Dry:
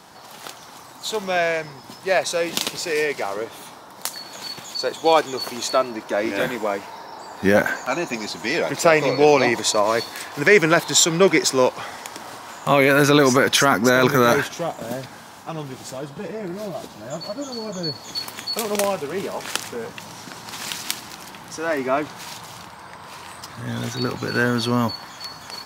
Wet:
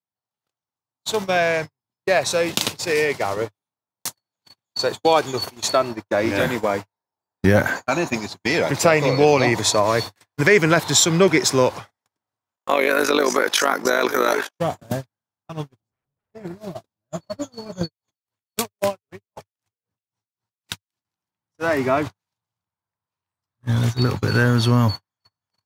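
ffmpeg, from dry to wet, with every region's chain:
ffmpeg -i in.wav -filter_complex "[0:a]asettb=1/sr,asplit=3[link_01][link_02][link_03];[link_01]atrim=end=12.564[link_04];[link_02]atrim=start=12.56:end=14.59,asetpts=PTS-STARTPTS,afade=type=in:duration=0.004:curve=qsin,afade=type=out:start_time=2.026:duration=0.004:curve=qsin,highpass=frequency=320:width=0.5412,highpass=frequency=320:width=1.3066,tremolo=f=51:d=0.75[link_05];[link_03]atrim=start=14.586[link_06];[link_04][link_05]acrossfade=duration=0.004:curve1=hsin:curve2=qsin[link_07];[link_07][link_06]acrossfade=duration=0.004:curve1=qsin:curve2=hsin,asettb=1/sr,asplit=3[link_08][link_09][link_10];[link_08]atrim=end=15.804[link_11];[link_09]atrim=start=15.8:end=16.33,asetpts=PTS-STARTPTS,afade=type=in:duration=0.004:curve=qsin,afade=type=out:start_time=0.526:duration=0.004:curve=qsin,tiltshelf=frequency=910:gain=8,bandreject=frequency=50:width_type=h:width=6,bandreject=frequency=100:width_type=h:width=6,bandreject=frequency=150:width_type=h:width=6,aeval=exprs='0.0282*(abs(mod(val(0)/0.0282+3,4)-2)-1)':channel_layout=same[link_12];[link_10]atrim=start=16.326[link_13];[link_11][link_12]acrossfade=duration=0.004:curve1=hsin:curve2=qsin[link_14];[link_14][link_13]acrossfade=duration=0.004:curve1=qsin:curve2=hsin,asettb=1/sr,asplit=3[link_15][link_16][link_17];[link_15]atrim=end=17.814[link_18];[link_16]atrim=start=17.81:end=21.05,asetpts=PTS-STARTPTS,afade=type=in:duration=0.004:curve=qsin,afade=type=out:start_time=3.236:duration=0.004:curve=qsin,acompressor=mode=upward:threshold=-25dB:ratio=2.5:attack=3.2:release=140:knee=2.83:detection=peak,aphaser=in_gain=1:out_gain=1:delay=3.6:decay=0.27:speed=1.4:type=triangular,aeval=exprs='val(0)*pow(10,-31*(0.5-0.5*cos(2*PI*3.8*n/s))/20)':channel_layout=same[link_19];[link_17]atrim=start=21.046[link_20];[link_18][link_19]acrossfade=duration=0.004:curve1=hsin:curve2=qsin[link_21];[link_21][link_20]acrossfade=duration=0.004:curve1=qsin:curve2=hsin,agate=range=-57dB:threshold=-27dB:ratio=16:detection=peak,equalizer=frequency=100:width_type=o:width=0.95:gain=14,acompressor=threshold=-25dB:ratio=1.5,volume=4.5dB" out.wav

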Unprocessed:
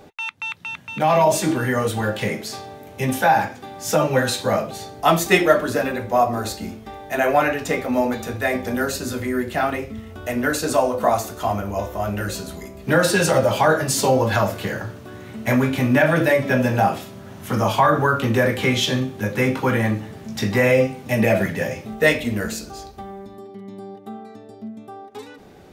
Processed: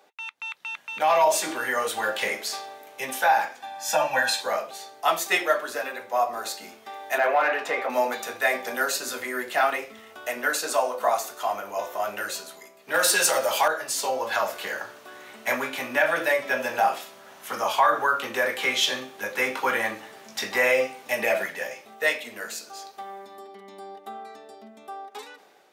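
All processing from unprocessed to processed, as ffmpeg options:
ffmpeg -i in.wav -filter_complex "[0:a]asettb=1/sr,asplit=3[link_01][link_02][link_03];[link_01]atrim=end=3.604[link_04];[link_02]atrim=start=3.6:end=4.41,asetpts=PTS-STARTPTS,afade=type=in:duration=0.004:curve=qsin,afade=type=out:start_time=0.806:duration=0.004:curve=qsin,highshelf=frequency=7600:gain=-5.5,aecho=1:1:1.2:0.94,atrim=end_sample=35721[link_05];[link_03]atrim=start=4.406[link_06];[link_04][link_05]acrossfade=duration=0.004:curve1=hsin:curve2=qsin[link_07];[link_07][link_06]acrossfade=duration=0.004:curve1=qsin:curve2=hsin,asettb=1/sr,asplit=3[link_08][link_09][link_10];[link_08]atrim=end=7.184[link_11];[link_09]atrim=start=7.18:end=7.9,asetpts=PTS-STARTPTS,afade=type=in:duration=0.004:curve=qsin,afade=type=out:start_time=0.716:duration=0.004:curve=qsin,equalizer=frequency=6100:width_type=o:width=0.83:gain=-3.5,acompressor=threshold=-19dB:ratio=2:attack=3.2:release=140:knee=1:detection=peak,asplit=2[link_12][link_13];[link_13]highpass=frequency=720:poles=1,volume=12dB,asoftclip=type=tanh:threshold=-10dB[link_14];[link_12][link_14]amix=inputs=2:normalize=0,lowpass=frequency=1100:poles=1,volume=-6dB[link_15];[link_10]atrim=start=7.896[link_16];[link_11][link_15]acrossfade=duration=0.004:curve1=hsin:curve2=qsin[link_17];[link_17][link_16]acrossfade=duration=0.004:curve1=qsin:curve2=hsin,asettb=1/sr,asplit=3[link_18][link_19][link_20];[link_18]atrim=end=12.944[link_21];[link_19]atrim=start=12.94:end=13.68,asetpts=PTS-STARTPTS,afade=type=in:duration=0.004:curve=qsin,afade=type=out:start_time=0.736:duration=0.004:curve=qsin,highpass=46,aemphasis=mode=production:type=cd,acontrast=41[link_22];[link_20]atrim=start=13.676[link_23];[link_21][link_22]acrossfade=duration=0.004:curve1=hsin:curve2=qsin[link_24];[link_24][link_23]acrossfade=duration=0.004:curve1=qsin:curve2=hsin,highpass=670,dynaudnorm=framelen=260:gausssize=5:maxgain=11.5dB,volume=-8dB" out.wav

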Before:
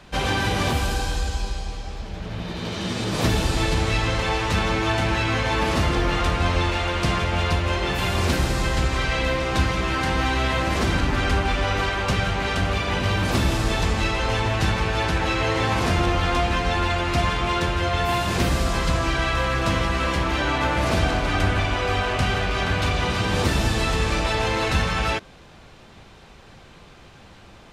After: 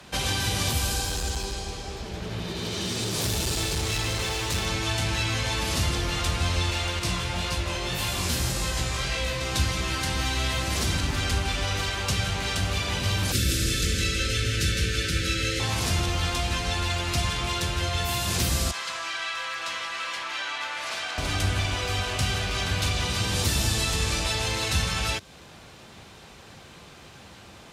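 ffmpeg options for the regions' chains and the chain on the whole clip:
ffmpeg -i in.wav -filter_complex "[0:a]asettb=1/sr,asplit=3[link_01][link_02][link_03];[link_01]atrim=end=1.044[link_04];[link_02]atrim=start=1.04:end=4.66,asetpts=PTS-STARTPTS,afade=type=in:duration=0.004:curve=qsin,afade=type=out:start_time=3.616:duration=0.004:curve=qsin,equalizer=frequency=390:width_type=o:width=0.25:gain=9,asoftclip=type=hard:threshold=-20.5dB[link_05];[link_03]atrim=start=4.656[link_06];[link_04][link_05]acrossfade=duration=0.004:curve1=hsin:curve2=qsin[link_07];[link_07][link_06]acrossfade=duration=0.004:curve1=qsin:curve2=hsin,asettb=1/sr,asplit=3[link_08][link_09][link_10];[link_08]atrim=end=6.994[link_11];[link_09]atrim=start=6.99:end=9.41,asetpts=PTS-STARTPTS,afade=type=in:duration=0.004:curve=qsin,afade=type=out:start_time=2.416:duration=0.004:curve=qsin,flanger=delay=19:depth=6.5:speed=1.8,asplit=2[link_12][link_13];[link_13]adelay=17,volume=-5dB[link_14];[link_12][link_14]amix=inputs=2:normalize=0,atrim=end_sample=106722[link_15];[link_10]atrim=start=9.406[link_16];[link_11][link_15]acrossfade=duration=0.004:curve1=hsin:curve2=qsin[link_17];[link_17][link_16]acrossfade=duration=0.004:curve1=qsin:curve2=hsin,asettb=1/sr,asplit=3[link_18][link_19][link_20];[link_18]atrim=end=13.324[link_21];[link_19]atrim=start=13.32:end=15.6,asetpts=PTS-STARTPTS,afade=type=in:duration=0.004:curve=qsin,afade=type=out:start_time=2.276:duration=0.004:curve=qsin,asuperstop=centerf=860:order=12:qfactor=1.2,aecho=1:1:161:0.531,atrim=end_sample=100548[link_22];[link_20]atrim=start=15.596[link_23];[link_21][link_22]acrossfade=duration=0.004:curve1=hsin:curve2=qsin[link_24];[link_24][link_23]acrossfade=duration=0.004:curve1=qsin:curve2=hsin,asettb=1/sr,asplit=3[link_25][link_26][link_27];[link_25]atrim=end=18.714[link_28];[link_26]atrim=start=18.71:end=21.18,asetpts=PTS-STARTPTS,afade=type=in:duration=0.004:curve=qsin,afade=type=out:start_time=2.466:duration=0.004:curve=qsin,highpass=1200,aemphasis=mode=reproduction:type=bsi,aeval=exprs='0.141*(abs(mod(val(0)/0.141+3,4)-2)-1)':channel_layout=same[link_29];[link_27]atrim=start=21.176[link_30];[link_28][link_29]acrossfade=duration=0.004:curve1=hsin:curve2=qsin[link_31];[link_31][link_30]acrossfade=duration=0.004:curve1=qsin:curve2=hsin,highpass=63,aemphasis=mode=production:type=cd,acrossover=split=130|3000[link_32][link_33][link_34];[link_33]acompressor=threshold=-33dB:ratio=3[link_35];[link_32][link_35][link_34]amix=inputs=3:normalize=0" out.wav

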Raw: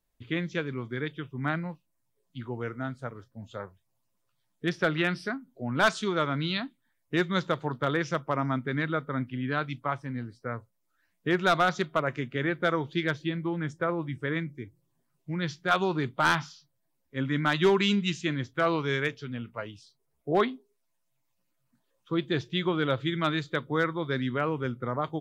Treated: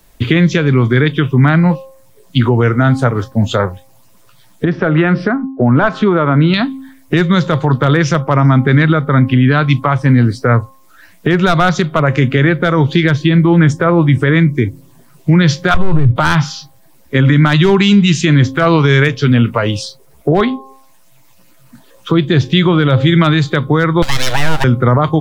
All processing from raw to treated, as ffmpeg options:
ffmpeg -i in.wav -filter_complex "[0:a]asettb=1/sr,asplit=3[link_01][link_02][link_03];[link_01]atrim=end=4.654[link_04];[link_02]atrim=start=4.65:end=6.54,asetpts=PTS-STARTPTS,afade=type=in:duration=0.004:curve=qsin,afade=type=out:start_time=1.886:duration=0.004:curve=qsin,agate=range=-33dB:threshold=-47dB:ratio=3:release=100:detection=peak,acompressor=threshold=-39dB:ratio=2:attack=3.2:release=140:knee=1:detection=peak,lowpass=1500[link_05];[link_03]atrim=start=6.536[link_06];[link_04][link_05]acrossfade=duration=0.004:curve1=hsin:curve2=qsin[link_07];[link_07][link_06]acrossfade=duration=0.004:curve1=qsin:curve2=hsin,asettb=1/sr,asplit=3[link_08][link_09][link_10];[link_08]atrim=end=15.744[link_11];[link_09]atrim=start=15.74:end=16.16,asetpts=PTS-STARTPTS,afade=type=in:duration=0.004:curve=qsin,afade=type=out:start_time=0.416:duration=0.004:curve=qsin,lowpass=frequency=1000:poles=1,aeval=exprs='(tanh(25.1*val(0)+0.55)-tanh(0.55))/25.1':channel_layout=same,lowshelf=frequency=160:width_type=q:width=1.5:gain=11[link_12];[link_10]atrim=start=16.156[link_13];[link_11][link_12]acrossfade=duration=0.004:curve1=hsin:curve2=qsin[link_14];[link_14][link_13]acrossfade=duration=0.004:curve1=qsin:curve2=hsin,asettb=1/sr,asplit=3[link_15][link_16][link_17];[link_15]atrim=end=24.024[link_18];[link_16]atrim=start=24.02:end=24.64,asetpts=PTS-STARTPTS,afade=type=in:duration=0.004:curve=qsin,afade=type=out:start_time=0.616:duration=0.004:curve=qsin,highpass=430,aeval=exprs='abs(val(0))':channel_layout=same,highshelf=frequency=3500:gain=9[link_19];[link_17]atrim=start=24.636[link_20];[link_18][link_19]acrossfade=duration=0.004:curve1=hsin:curve2=qsin[link_21];[link_21][link_20]acrossfade=duration=0.004:curve1=qsin:curve2=hsin,bandreject=frequency=266.9:width_type=h:width=4,bandreject=frequency=533.8:width_type=h:width=4,bandreject=frequency=800.7:width_type=h:width=4,bandreject=frequency=1067.6:width_type=h:width=4,acrossover=split=130[link_22][link_23];[link_23]acompressor=threshold=-39dB:ratio=5[link_24];[link_22][link_24]amix=inputs=2:normalize=0,alimiter=level_in=31.5dB:limit=-1dB:release=50:level=0:latency=1,volume=-1dB" out.wav

